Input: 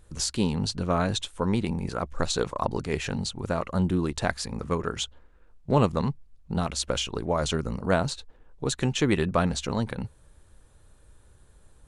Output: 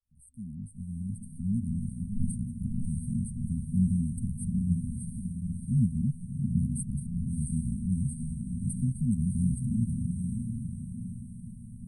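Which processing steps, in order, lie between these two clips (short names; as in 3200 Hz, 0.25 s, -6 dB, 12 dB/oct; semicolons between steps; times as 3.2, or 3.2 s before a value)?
opening faded in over 2.15 s; diffused feedback echo 0.694 s, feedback 47%, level -4 dB; FFT band-reject 250–8200 Hz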